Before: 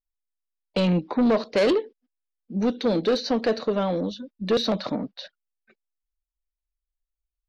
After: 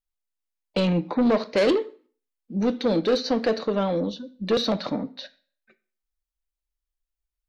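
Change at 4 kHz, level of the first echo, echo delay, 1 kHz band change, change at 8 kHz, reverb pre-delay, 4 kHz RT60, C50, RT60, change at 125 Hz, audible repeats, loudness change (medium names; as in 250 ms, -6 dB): +0.5 dB, no echo, no echo, 0.0 dB, no reading, 3 ms, 0.40 s, 18.0 dB, 0.45 s, -0.5 dB, no echo, 0.0 dB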